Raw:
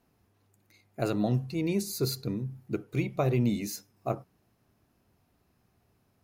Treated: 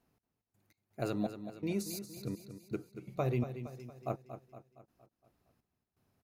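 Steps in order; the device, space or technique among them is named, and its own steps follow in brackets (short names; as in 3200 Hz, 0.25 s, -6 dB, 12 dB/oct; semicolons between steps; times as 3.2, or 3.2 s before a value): trance gate with a delay (step gate "x..x.xx..xx." 83 bpm -24 dB; feedback echo 0.232 s, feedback 51%, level -10.5 dB); gain -6 dB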